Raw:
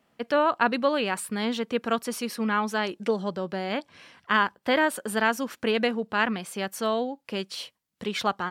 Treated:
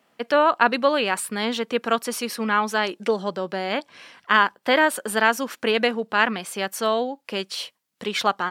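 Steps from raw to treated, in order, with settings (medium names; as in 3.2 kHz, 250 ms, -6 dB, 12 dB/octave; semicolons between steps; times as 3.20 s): high-pass 340 Hz 6 dB/octave; trim +5.5 dB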